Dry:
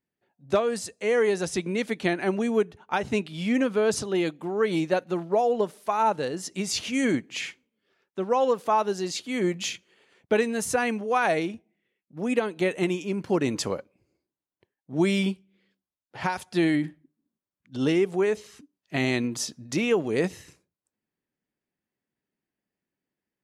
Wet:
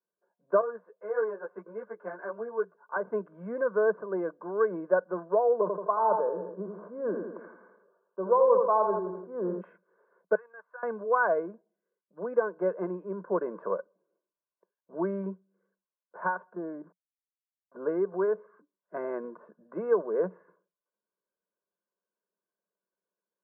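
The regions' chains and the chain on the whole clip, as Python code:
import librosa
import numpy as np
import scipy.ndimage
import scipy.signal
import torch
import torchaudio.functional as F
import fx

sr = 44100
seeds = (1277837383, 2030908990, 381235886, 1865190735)

y = fx.chain(x, sr, fx.highpass(hz=500.0, slope=6),
    fx.ensemble(), at=(0.61, 2.96))
y = fx.chain(y, sr, fx.lowpass(hz=1200.0, slope=24),
    fx.echo_feedback(ms=83, feedback_pct=46, wet_db=-8),
    fx.sustainer(db_per_s=57.0), at=(5.61, 9.61))
y = fx.chain(y, sr, fx.highpass(hz=1200.0, slope=12),
    fx.level_steps(step_db=14), at=(10.35, 10.83))
y = fx.chain(y, sr, fx.lowpass(hz=1000.0, slope=12),
    fx.sample_gate(floor_db=-46.5),
    fx.level_steps(step_db=13), at=(16.53, 17.76))
y = scipy.signal.sosfilt(scipy.signal.cheby1(5, 1.0, [180.0, 1500.0], 'bandpass', fs=sr, output='sos'), y)
y = fx.low_shelf(y, sr, hz=490.0, db=-8.5)
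y = y + 0.82 * np.pad(y, (int(1.9 * sr / 1000.0), 0))[:len(y)]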